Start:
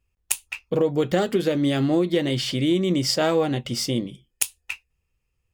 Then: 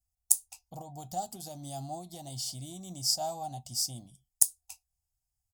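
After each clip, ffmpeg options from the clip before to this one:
-af "firequalizer=gain_entry='entry(110,0);entry(190,-8);entry(470,-24);entry(720,11);entry(1100,-11);entry(1800,-25);entry(4900,8);entry(7900,14)':delay=0.05:min_phase=1,volume=0.237"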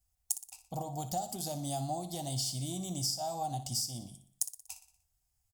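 -filter_complex "[0:a]acompressor=threshold=0.0141:ratio=16,asplit=2[s0][s1];[s1]aecho=0:1:60|120|180|240|300:0.251|0.128|0.0653|0.0333|0.017[s2];[s0][s2]amix=inputs=2:normalize=0,volume=2"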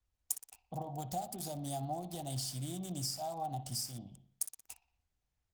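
-filter_complex "[0:a]acrossover=split=140|1300|3300[s0][s1][s2][s3];[s3]aeval=exprs='val(0)*gte(abs(val(0)),0.00668)':c=same[s4];[s0][s1][s2][s4]amix=inputs=4:normalize=0,volume=0.75" -ar 48000 -c:a libopus -b:a 32k

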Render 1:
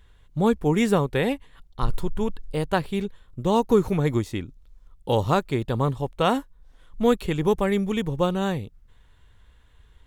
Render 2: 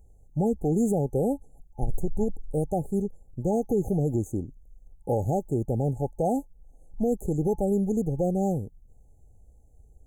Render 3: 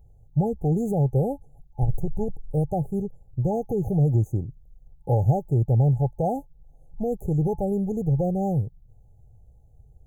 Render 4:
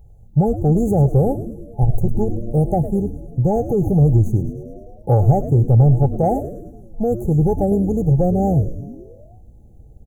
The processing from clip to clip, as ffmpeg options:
-af "afftfilt=real='re*(1-between(b*sr/4096,860,6100))':imag='im*(1-between(b*sr/4096,860,6100))':win_size=4096:overlap=0.75,alimiter=limit=0.158:level=0:latency=1:release=65"
-af "equalizer=f=125:t=o:w=1:g=12,equalizer=f=250:t=o:w=1:g=-7,equalizer=f=1000:t=o:w=1:g=4,equalizer=f=2000:t=o:w=1:g=-5,equalizer=f=4000:t=o:w=1:g=6,equalizer=f=8000:t=o:w=1:g=-12"
-filter_complex "[0:a]acontrast=60,asplit=2[s0][s1];[s1]asplit=7[s2][s3][s4][s5][s6][s7][s8];[s2]adelay=105,afreqshift=-120,volume=0.282[s9];[s3]adelay=210,afreqshift=-240,volume=0.166[s10];[s4]adelay=315,afreqshift=-360,volume=0.0977[s11];[s5]adelay=420,afreqshift=-480,volume=0.0582[s12];[s6]adelay=525,afreqshift=-600,volume=0.0343[s13];[s7]adelay=630,afreqshift=-720,volume=0.0202[s14];[s8]adelay=735,afreqshift=-840,volume=0.0119[s15];[s9][s10][s11][s12][s13][s14][s15]amix=inputs=7:normalize=0[s16];[s0][s16]amix=inputs=2:normalize=0,volume=1.12"

